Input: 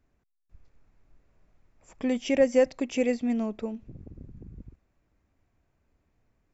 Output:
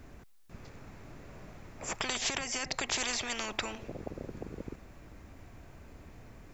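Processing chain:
0:02.18–0:02.92: downward compressor 6 to 1, threshold −29 dBFS, peak gain reduction 13 dB
every bin compressed towards the loudest bin 10 to 1

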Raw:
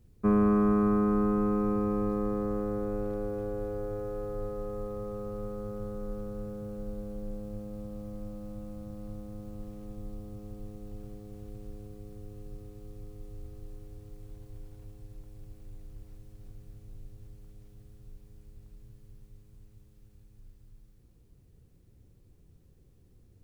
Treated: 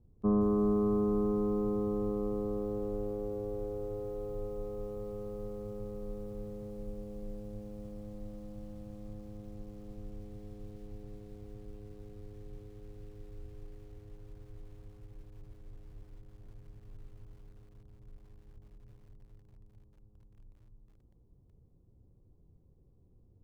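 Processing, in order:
Butterworth low-pass 1,100 Hz 36 dB per octave
feedback echo at a low word length 171 ms, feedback 55%, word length 9 bits, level −11.5 dB
level −3.5 dB

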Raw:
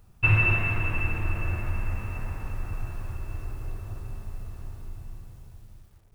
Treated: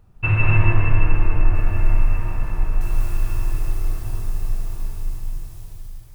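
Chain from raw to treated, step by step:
high-shelf EQ 3,000 Hz −10.5 dB, from 0:01.55 −2.5 dB, from 0:02.81 +11.5 dB
convolution reverb RT60 0.75 s, pre-delay 151 ms, DRR −0.5 dB
level +2.5 dB

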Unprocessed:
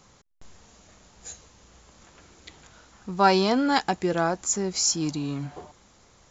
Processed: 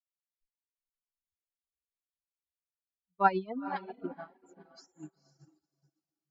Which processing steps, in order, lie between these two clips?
spectral dynamics exaggerated over time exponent 3
treble cut that deepens with the level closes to 2,200 Hz, closed at −24 dBFS
feedback delay with all-pass diffusion 489 ms, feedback 41%, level −5 dB
reverb reduction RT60 0.61 s
0:04.05–0:04.59: high-shelf EQ 3,000 Hz → 4,200 Hz −10.5 dB
expander for the loud parts 2.5 to 1, over −47 dBFS

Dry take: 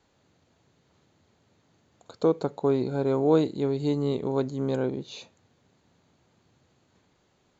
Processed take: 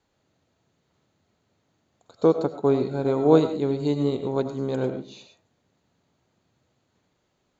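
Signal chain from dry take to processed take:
convolution reverb RT60 0.35 s, pre-delay 55 ms, DRR 6 dB
expander for the loud parts 1.5 to 1, over −38 dBFS
level +5 dB

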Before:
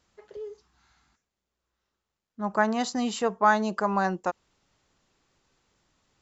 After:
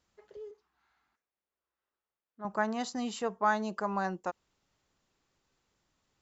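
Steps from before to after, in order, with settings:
0:00.51–0:02.45: bass and treble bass −13 dB, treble −14 dB
level −7 dB

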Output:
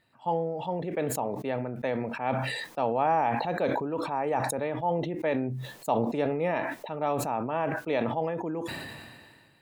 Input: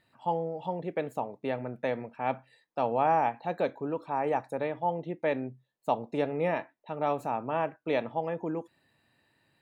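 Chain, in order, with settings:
level that may fall only so fast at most 32 dB per second

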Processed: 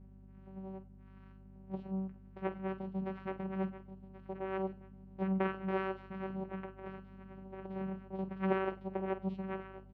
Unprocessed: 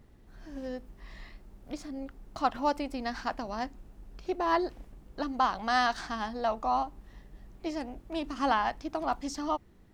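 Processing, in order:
amplitude tremolo 0.57 Hz, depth 44%
repeating echo 1,080 ms, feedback 31%, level −15 dB
flanger 0.24 Hz, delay 5.9 ms, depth 9.9 ms, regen +35%
channel vocoder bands 4, saw 191 Hz
high-frequency loss of the air 400 metres
0:06.14–0:08.19: compressor whose output falls as the input rises −42 dBFS, ratio −0.5
mains hum 50 Hz, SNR 14 dB
flutter between parallel walls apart 8.2 metres, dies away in 0.25 s
level +1 dB

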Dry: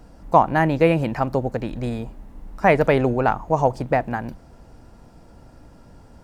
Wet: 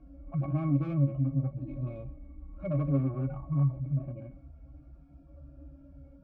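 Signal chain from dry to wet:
harmonic-percussive split with one part muted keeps harmonic
tube saturation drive 25 dB, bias 0.25
resonances in every octave C#, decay 0.14 s
level +7 dB

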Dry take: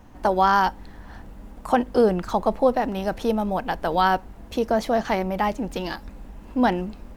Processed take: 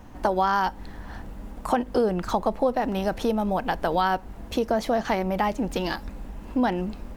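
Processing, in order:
downward compressor 2.5 to 1, threshold −25 dBFS, peak gain reduction 8.5 dB
level +3 dB

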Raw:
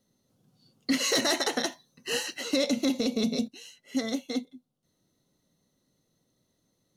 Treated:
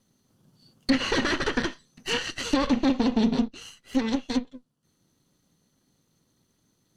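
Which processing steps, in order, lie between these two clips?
lower of the sound and its delayed copy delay 0.65 ms
treble cut that deepens with the level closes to 2,900 Hz, closed at −26 dBFS
level +5.5 dB

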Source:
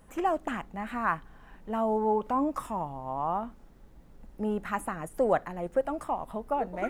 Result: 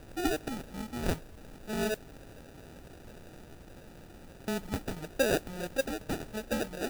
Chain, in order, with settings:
adaptive Wiener filter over 25 samples
0:01.94–0:04.48: Butterworth high-pass 1,700 Hz 96 dB per octave
background noise pink −48 dBFS
decimation without filtering 41×
noise that follows the level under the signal 20 dB
level −2 dB

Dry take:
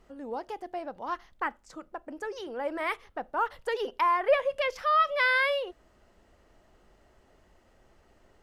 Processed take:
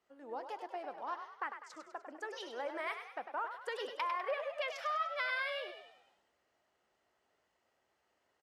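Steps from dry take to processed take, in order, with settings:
meter weighting curve A
downward compressor 4 to 1, threshold −35 dBFS, peak gain reduction 13.5 dB
echo with shifted repeats 100 ms, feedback 56%, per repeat +46 Hz, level −7.5 dB
multiband upward and downward expander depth 40%
level −2.5 dB

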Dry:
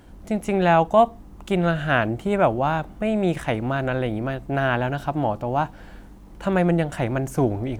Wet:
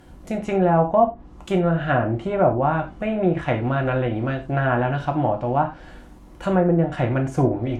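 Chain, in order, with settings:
treble cut that deepens with the level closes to 860 Hz, closed at −15 dBFS
reverb whose tail is shaped and stops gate 120 ms falling, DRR 2.5 dB

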